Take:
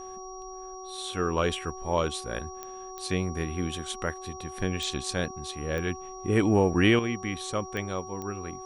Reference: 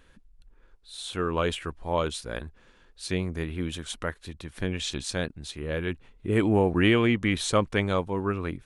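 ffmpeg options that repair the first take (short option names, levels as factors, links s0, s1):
-af "adeclick=t=4,bandreject=f=374.5:t=h:w=4,bandreject=f=749:t=h:w=4,bandreject=f=1123.5:t=h:w=4,bandreject=f=5700:w=30,asetnsamples=n=441:p=0,asendcmd='6.99 volume volume 7.5dB',volume=1"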